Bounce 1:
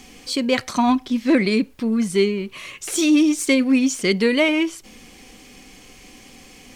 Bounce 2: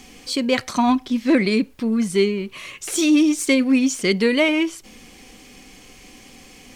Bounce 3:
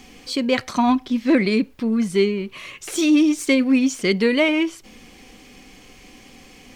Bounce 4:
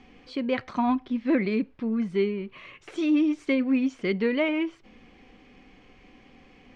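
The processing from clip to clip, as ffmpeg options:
ffmpeg -i in.wav -af anull out.wav
ffmpeg -i in.wav -af "equalizer=frequency=9600:width_type=o:width=1.5:gain=-5.5" out.wav
ffmpeg -i in.wav -af "lowpass=2500,volume=-6.5dB" out.wav

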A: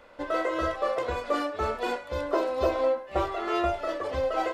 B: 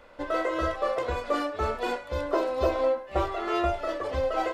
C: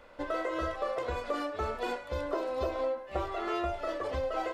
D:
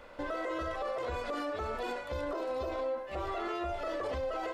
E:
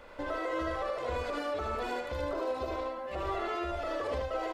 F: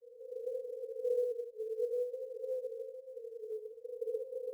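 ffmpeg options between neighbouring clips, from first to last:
ffmpeg -i in.wav -af "lowshelf=frequency=71:gain=6.5" out.wav
ffmpeg -i in.wav -af "acompressor=threshold=-28dB:ratio=3,volume=-2dB" out.wav
ffmpeg -i in.wav -af "alimiter=level_in=7dB:limit=-24dB:level=0:latency=1:release=34,volume=-7dB,volume=3dB" out.wav
ffmpeg -i in.wav -af "aecho=1:1:77:0.708" out.wav
ffmpeg -i in.wav -af "asuperpass=centerf=470:order=12:qfactor=6.2,acrusher=bits=9:mode=log:mix=0:aa=0.000001,volume=5.5dB" -ar 48000 -c:a libopus -b:a 48k out.opus

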